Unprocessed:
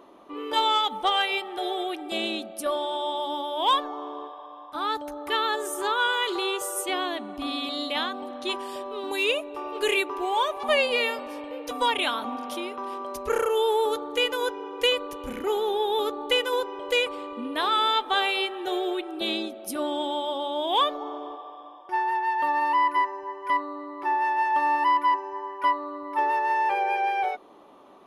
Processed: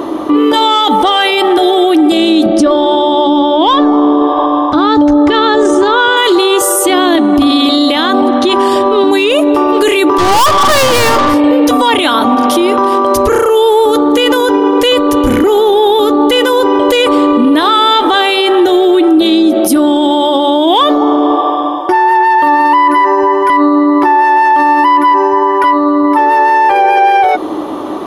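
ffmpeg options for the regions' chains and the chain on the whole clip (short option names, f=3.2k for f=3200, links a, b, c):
-filter_complex "[0:a]asettb=1/sr,asplit=3[a][b][c];[a]atrim=end=2.464[d];[b]atrim=start=2.46:end=6.17,asetpts=PTS-STARTPTS,afade=t=in:d=0.004:c=qsin,afade=t=out:st=3.706:d=0.004:c=qsin,lowpass=f=6.4k:w=0.5412,lowpass=f=6.4k:w=1.3066,lowshelf=f=380:g=9.5[e];[c]atrim=start=6.166[f];[d][e]acrossfade=d=0.004:c1=hsin:c2=qsin[g];[g][f]acrossfade=d=0.004:c1=qsin:c2=hsin,asettb=1/sr,asplit=3[h][i][j];[h]atrim=end=8.214[k];[i]atrim=start=8.21:end=9.3,asetpts=PTS-STARTPTS,afade=t=in:d=0.004:c=qsin,afade=t=out:st=1.086:d=0.004:c=qsin,highshelf=f=7.5k:g=-11.5,bandreject=f=550:w=6.5[l];[j]atrim=start=9.296[m];[k][l]acrossfade=d=0.004:c1=hsin:c2=qsin[n];[n][m]acrossfade=d=0.004:c1=qsin:c2=hsin,asettb=1/sr,asplit=3[o][p][q];[o]atrim=end=10.184[r];[p]atrim=start=10.18:end=11.34,asetpts=PTS-STARTPTS,afade=t=in:d=0.004:c=qsin,afade=t=out:st=1.156:d=0.004:c=qsin,equalizer=f=1.1k:t=o:w=0.36:g=15,aeval=exprs='(tanh(56.2*val(0)+0.45)-tanh(0.45))/56.2':c=same[s];[q]atrim=start=11.336[t];[r][s]acrossfade=d=0.004:c1=hsin:c2=qsin[u];[u][t]acrossfade=d=0.004:c1=qsin:c2=hsin,equalizer=f=100:t=o:w=0.33:g=12,equalizer=f=315:t=o:w=0.33:g=12,equalizer=f=2.5k:t=o:w=0.33:g=-6,acontrast=36,alimiter=level_in=25dB:limit=-1dB:release=50:level=0:latency=1,volume=-1dB"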